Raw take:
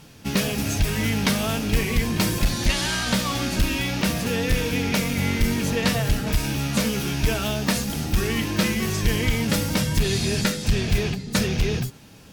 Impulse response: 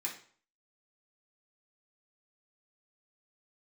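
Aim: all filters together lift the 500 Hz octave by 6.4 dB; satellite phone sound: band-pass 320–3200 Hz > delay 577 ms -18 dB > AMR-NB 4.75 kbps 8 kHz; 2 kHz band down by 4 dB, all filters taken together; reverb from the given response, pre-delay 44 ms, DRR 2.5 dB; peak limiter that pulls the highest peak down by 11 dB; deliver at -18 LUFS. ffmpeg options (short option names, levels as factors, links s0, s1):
-filter_complex "[0:a]equalizer=f=500:t=o:g=9,equalizer=f=2000:t=o:g=-4.5,alimiter=limit=0.126:level=0:latency=1,asplit=2[s0][s1];[1:a]atrim=start_sample=2205,adelay=44[s2];[s1][s2]afir=irnorm=-1:irlink=0,volume=0.631[s3];[s0][s3]amix=inputs=2:normalize=0,highpass=320,lowpass=3200,aecho=1:1:577:0.126,volume=5.31" -ar 8000 -c:a libopencore_amrnb -b:a 4750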